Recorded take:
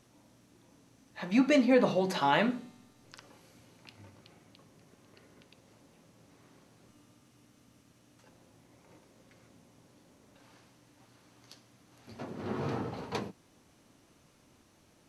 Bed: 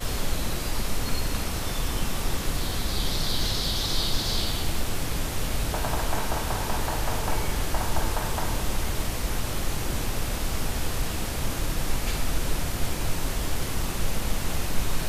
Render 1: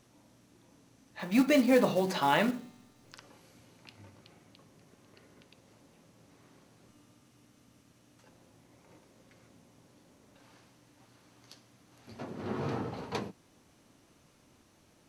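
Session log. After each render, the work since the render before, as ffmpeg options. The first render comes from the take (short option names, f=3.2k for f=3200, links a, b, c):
-filter_complex "[0:a]asettb=1/sr,asplit=3[a][b][c];[a]atrim=end=1.194[d];[b]atrim=start=1.19:end=3.15,asetpts=PTS-STARTPTS,afade=t=in:d=0.004:c=qsin,afade=t=out:st=1.956:d=0.004:c=qsin,acrusher=bits=5:mode=log:mix=0:aa=0.000001[e];[c]atrim=start=3.146[f];[d][e]acrossfade=d=0.004:c1=hsin:c2=qsin[g];[g][f]acrossfade=d=0.004:c1=qsin:c2=hsin"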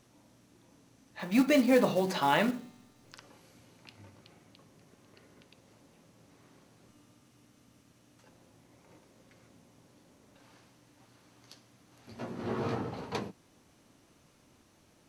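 -filter_complex "[0:a]asettb=1/sr,asplit=3[a][b][c];[a]atrim=end=12.164[d];[b]atrim=start=12.16:end=12.75,asetpts=PTS-STARTPTS,afade=t=in:d=0.004:c=qsin,afade=t=out:st=0.586:d=0.004:c=qsin,asplit=2[e][f];[f]adelay=17,volume=-3dB[g];[e][g]amix=inputs=2:normalize=0,atrim=end_sample=26019[h];[c]atrim=start=12.746[i];[d][h]acrossfade=d=0.004:c1=hsin:c2=qsin[j];[j][i]acrossfade=d=0.004:c1=qsin:c2=hsin"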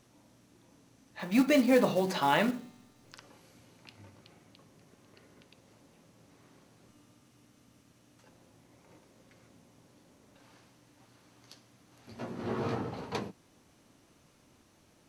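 -af anull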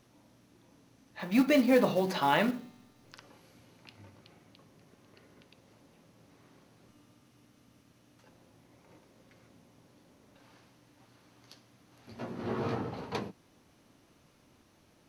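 -af "equalizer=f=7.8k:w=1.9:g=-6"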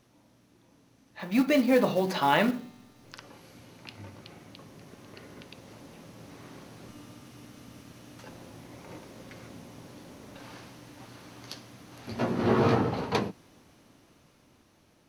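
-af "dynaudnorm=f=600:g=11:m=14dB"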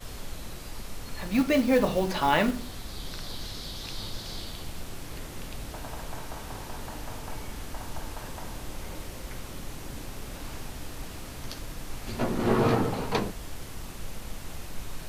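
-filter_complex "[1:a]volume=-11.5dB[a];[0:a][a]amix=inputs=2:normalize=0"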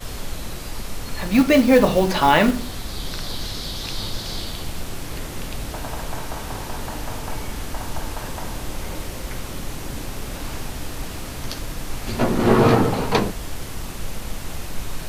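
-af "volume=8.5dB,alimiter=limit=-2dB:level=0:latency=1"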